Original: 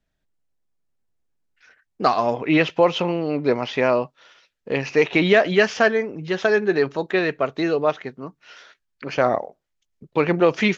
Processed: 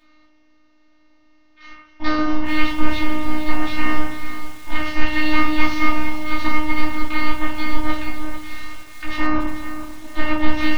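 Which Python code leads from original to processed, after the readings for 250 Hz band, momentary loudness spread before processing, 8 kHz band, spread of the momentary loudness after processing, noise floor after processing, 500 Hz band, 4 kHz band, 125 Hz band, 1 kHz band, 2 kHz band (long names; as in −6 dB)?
+1.5 dB, 11 LU, can't be measured, 13 LU, −54 dBFS, −14.0 dB, 0.0 dB, −2.0 dB, 0.0 dB, 0.0 dB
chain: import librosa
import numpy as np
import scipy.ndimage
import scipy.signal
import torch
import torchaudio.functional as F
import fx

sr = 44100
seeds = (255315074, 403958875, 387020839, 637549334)

y = fx.bin_compress(x, sr, power=0.6)
y = scipy.signal.sosfilt(scipy.signal.butter(4, 4600.0, 'lowpass', fs=sr, output='sos'), y)
y = fx.high_shelf(y, sr, hz=2100.0, db=9.5)
y = y * np.sin(2.0 * np.pi * 480.0 * np.arange(len(y)) / sr)
y = fx.comb_fb(y, sr, f0_hz=210.0, decay_s=0.38, harmonics='all', damping=0.0, mix_pct=60)
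y = fx.robotise(y, sr, hz=306.0)
y = y + 10.0 ** (-13.5 / 20.0) * np.pad(y, (int(242 * sr / 1000.0), 0))[:len(y)]
y = fx.room_shoebox(y, sr, seeds[0], volume_m3=220.0, walls='furnished', distance_m=3.4)
y = fx.echo_crushed(y, sr, ms=445, feedback_pct=35, bits=5, wet_db=-11.0)
y = y * 10.0 ** (-3.0 / 20.0)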